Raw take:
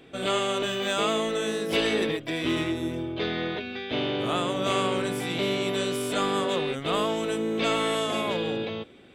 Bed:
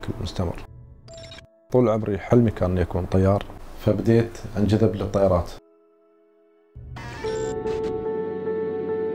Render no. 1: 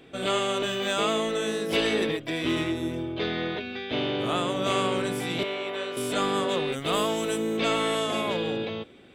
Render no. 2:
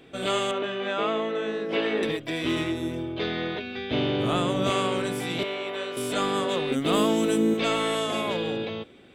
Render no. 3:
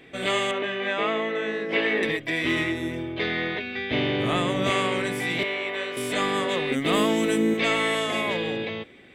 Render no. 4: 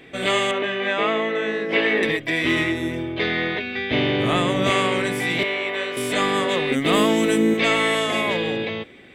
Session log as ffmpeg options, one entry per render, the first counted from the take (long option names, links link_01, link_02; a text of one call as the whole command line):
ffmpeg -i in.wav -filter_complex "[0:a]asettb=1/sr,asplit=3[link_01][link_02][link_03];[link_01]atrim=end=5.434[link_04];[link_02]atrim=start=5.43:end=5.97,asetpts=PTS-STARTPTS,afade=type=in:duration=0.004:curve=qsin,afade=type=out:start_time=0.536:duration=0.004:curve=qsin,acrossover=split=410 3300:gain=0.126 1 0.158[link_05][link_06][link_07];[link_05][link_06][link_07]amix=inputs=3:normalize=0[link_08];[link_03]atrim=start=5.966[link_09];[link_04][link_08]acrossfade=duration=0.004:curve1=hsin:curve2=qsin[link_10];[link_10][link_09]acrossfade=duration=0.004:curve1=qsin:curve2=hsin,asettb=1/sr,asplit=3[link_11][link_12][link_13];[link_11]atrim=end=6.724[link_14];[link_12]atrim=start=6.72:end=7.57,asetpts=PTS-STARTPTS,afade=type=in:duration=0.004:curve=qsin,afade=type=out:start_time=0.846:duration=0.004:curve=qsin,highshelf=frequency=7500:gain=12[link_15];[link_13]atrim=start=7.566[link_16];[link_14][link_15]acrossfade=duration=0.004:curve1=hsin:curve2=qsin[link_17];[link_17][link_16]acrossfade=duration=0.004:curve1=qsin:curve2=hsin" out.wav
ffmpeg -i in.wav -filter_complex "[0:a]asettb=1/sr,asplit=3[link_01][link_02][link_03];[link_01]atrim=end=0.514[link_04];[link_02]atrim=start=0.51:end=2.03,asetpts=PTS-STARTPTS,afade=type=in:duration=0.004:curve=qsin,afade=type=out:start_time=1.516:duration=0.004:curve=qsin,highpass=200,lowpass=2500[link_05];[link_03]atrim=start=2.026[link_06];[link_04][link_05]acrossfade=duration=0.004:curve1=hsin:curve2=qsin[link_07];[link_07][link_06]acrossfade=duration=0.004:curve1=qsin:curve2=hsin,asettb=1/sr,asplit=3[link_08][link_09][link_10];[link_08]atrim=end=3.774[link_11];[link_09]atrim=start=3.77:end=4.7,asetpts=PTS-STARTPTS,afade=type=in:duration=0.004:curve=qsin,afade=type=out:start_time=0.926:duration=0.004:curve=qsin,lowshelf=frequency=240:gain=8.5[link_12];[link_10]atrim=start=4.696[link_13];[link_11][link_12]acrossfade=duration=0.004:curve1=hsin:curve2=qsin[link_14];[link_14][link_13]acrossfade=duration=0.004:curve1=qsin:curve2=hsin,asettb=1/sr,asplit=3[link_15][link_16][link_17];[link_15]atrim=end=6.714[link_18];[link_16]atrim=start=6.71:end=7.54,asetpts=PTS-STARTPTS,afade=type=in:duration=0.004:curve=qsin,afade=type=out:start_time=0.826:duration=0.004:curve=qsin,equalizer=frequency=260:width=1.5:gain=11[link_19];[link_17]atrim=start=7.536[link_20];[link_18][link_19]acrossfade=duration=0.004:curve1=hsin:curve2=qsin[link_21];[link_21][link_20]acrossfade=duration=0.004:curve1=qsin:curve2=hsin" out.wav
ffmpeg -i in.wav -af "equalizer=frequency=2000:width=2.6:gain=11,bandreject=frequency=1400:width=13" out.wav
ffmpeg -i in.wav -af "volume=4dB" out.wav